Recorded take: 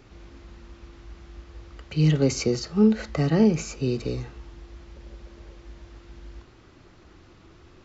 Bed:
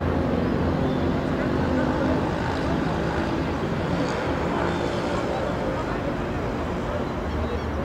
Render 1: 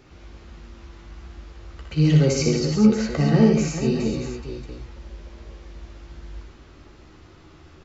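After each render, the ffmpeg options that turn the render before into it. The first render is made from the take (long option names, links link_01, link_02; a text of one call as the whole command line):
ffmpeg -i in.wav -filter_complex "[0:a]asplit=2[link_01][link_02];[link_02]adelay=13,volume=-6.5dB[link_03];[link_01][link_03]amix=inputs=2:normalize=0,aecho=1:1:61|81|138|426|630:0.531|0.422|0.447|0.316|0.282" out.wav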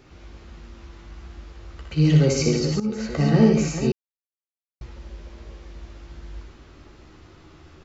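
ffmpeg -i in.wav -filter_complex "[0:a]asplit=4[link_01][link_02][link_03][link_04];[link_01]atrim=end=2.8,asetpts=PTS-STARTPTS,afade=type=out:start_time=2.796:duration=0.004:curve=hsin:silence=0.141254[link_05];[link_02]atrim=start=2.8:end=3.92,asetpts=PTS-STARTPTS,afade=type=in:duration=0.43:silence=0.141254,afade=type=out:start_time=1.116:duration=0.004:curve=hsin[link_06];[link_03]atrim=start=3.92:end=4.81,asetpts=PTS-STARTPTS,volume=0[link_07];[link_04]atrim=start=4.81,asetpts=PTS-STARTPTS,afade=type=in:duration=0.004:curve=hsin[link_08];[link_05][link_06][link_07][link_08]concat=n=4:v=0:a=1" out.wav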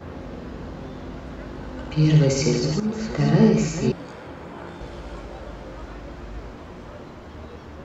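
ffmpeg -i in.wav -i bed.wav -filter_complex "[1:a]volume=-13dB[link_01];[0:a][link_01]amix=inputs=2:normalize=0" out.wav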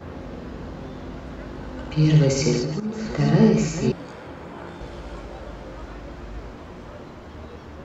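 ffmpeg -i in.wav -filter_complex "[0:a]asettb=1/sr,asplit=3[link_01][link_02][link_03];[link_01]atrim=end=2.624[link_04];[link_02]atrim=start=2.62:end=3.06,asetpts=PTS-STARTPTS,afade=type=in:duration=0.004:curve=qsin,afade=type=out:start_time=0.436:duration=0.004:curve=qsin,acrossover=split=100|3200[link_05][link_06][link_07];[link_05]acompressor=threshold=-48dB:ratio=4[link_08];[link_06]acompressor=threshold=-24dB:ratio=4[link_09];[link_07]acompressor=threshold=-46dB:ratio=4[link_10];[link_08][link_09][link_10]amix=inputs=3:normalize=0[link_11];[link_03]atrim=start=3.056[link_12];[link_04][link_11]acrossfade=duration=0.004:curve1=hsin:curve2=qsin[link_13];[link_13][link_12]acrossfade=duration=0.004:curve1=qsin:curve2=hsin" out.wav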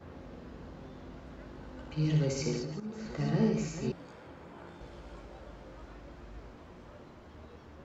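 ffmpeg -i in.wav -af "volume=-12dB" out.wav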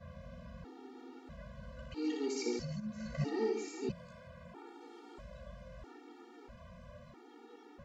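ffmpeg -i in.wav -af "afftfilt=real='re*gt(sin(2*PI*0.77*pts/sr)*(1-2*mod(floor(b*sr/1024/240),2)),0)':imag='im*gt(sin(2*PI*0.77*pts/sr)*(1-2*mod(floor(b*sr/1024/240),2)),0)':win_size=1024:overlap=0.75" out.wav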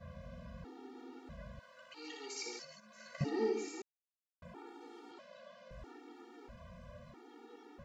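ffmpeg -i in.wav -filter_complex "[0:a]asettb=1/sr,asplit=3[link_01][link_02][link_03];[link_01]atrim=end=1.594[link_04];[link_02]atrim=start=1.59:end=3.21,asetpts=PTS-STARTPTS,afade=type=in:duration=0.004:curve=qsin,afade=type=out:start_time=1.616:duration=0.004:curve=qsin,highpass=820[link_05];[link_03]atrim=start=3.206[link_06];[link_04][link_05]acrossfade=duration=0.004:curve1=hsin:curve2=qsin[link_07];[link_07][link_06]acrossfade=duration=0.004:curve1=qsin:curve2=hsin,asettb=1/sr,asplit=3[link_08][link_09][link_10];[link_08]atrim=end=5.114[link_11];[link_09]atrim=start=5.11:end=5.71,asetpts=PTS-STARTPTS,afade=type=in:duration=0.004:curve=qsin,afade=type=out:start_time=0.596:duration=0.004:curve=qsin,highpass=frequency=280:width=0.5412,highpass=frequency=280:width=1.3066,equalizer=frequency=460:width_type=q:width=4:gain=-5,equalizer=frequency=3000:width_type=q:width=4:gain=3,equalizer=frequency=4400:width_type=q:width=4:gain=4,lowpass=frequency=6900:width=0.5412,lowpass=frequency=6900:width=1.3066[link_12];[link_10]atrim=start=5.706[link_13];[link_11][link_12]acrossfade=duration=0.004:curve1=hsin:curve2=qsin[link_14];[link_14][link_13]acrossfade=duration=0.004:curve1=qsin:curve2=hsin,asplit=3[link_15][link_16][link_17];[link_15]atrim=end=3.82,asetpts=PTS-STARTPTS,afade=type=out:start_time=3.816:duration=0.004:curve=hsin[link_18];[link_16]atrim=start=3.82:end=4.42,asetpts=PTS-STARTPTS,volume=0[link_19];[link_17]atrim=start=4.42,asetpts=PTS-STARTPTS,afade=type=in:duration=0.004:curve=hsin[link_20];[link_18][link_19][link_20]concat=n=3:v=0:a=1" out.wav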